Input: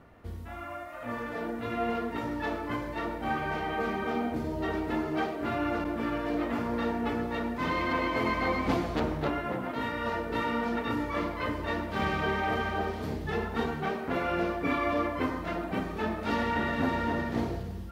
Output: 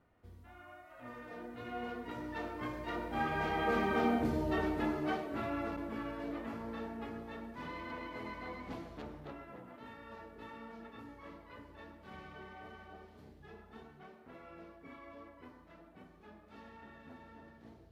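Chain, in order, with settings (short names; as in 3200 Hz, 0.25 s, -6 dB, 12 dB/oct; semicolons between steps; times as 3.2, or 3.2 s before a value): Doppler pass-by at 4.05, 11 m/s, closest 7.5 m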